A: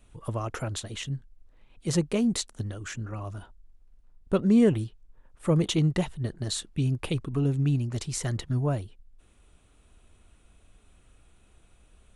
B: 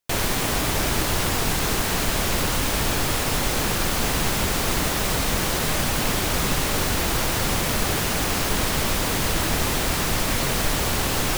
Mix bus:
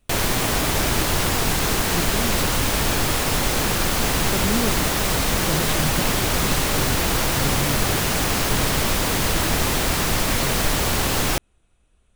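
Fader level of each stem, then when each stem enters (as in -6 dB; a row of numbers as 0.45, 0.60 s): -5.0, +2.0 dB; 0.00, 0.00 s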